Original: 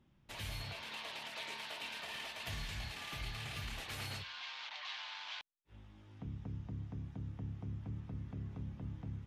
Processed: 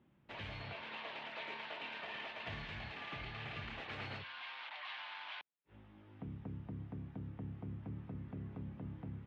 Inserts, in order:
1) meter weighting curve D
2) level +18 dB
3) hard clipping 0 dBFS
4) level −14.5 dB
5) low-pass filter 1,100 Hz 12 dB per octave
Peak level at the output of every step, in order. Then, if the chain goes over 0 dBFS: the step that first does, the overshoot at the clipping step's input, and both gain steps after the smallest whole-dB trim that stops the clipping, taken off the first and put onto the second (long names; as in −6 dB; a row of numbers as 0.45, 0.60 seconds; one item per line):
−21.0, −3.0, −3.0, −17.5, −32.5 dBFS
no step passes full scale